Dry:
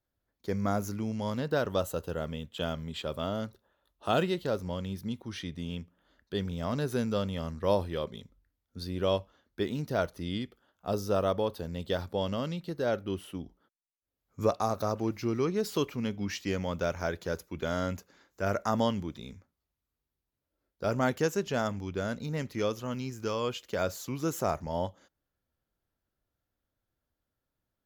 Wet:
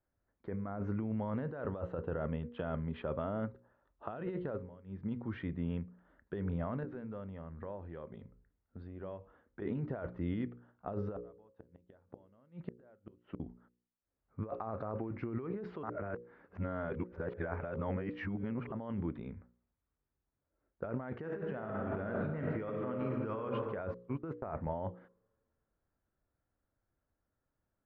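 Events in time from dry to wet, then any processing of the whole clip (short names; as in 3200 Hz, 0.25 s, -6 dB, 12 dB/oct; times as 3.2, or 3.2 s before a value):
4.47–5.09 dip -21.5 dB, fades 0.24 s
6.83–9.62 compressor 4:1, threshold -44 dBFS
11.16–13.4 flipped gate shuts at -27 dBFS, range -34 dB
15.83–18.72 reverse
21.17–23.41 reverb throw, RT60 2.2 s, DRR 2 dB
23.94–24.45 gate -35 dBFS, range -29 dB
whole clip: LPF 1900 Hz 24 dB/oct; de-hum 59.91 Hz, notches 9; negative-ratio compressor -35 dBFS, ratio -1; gain -2.5 dB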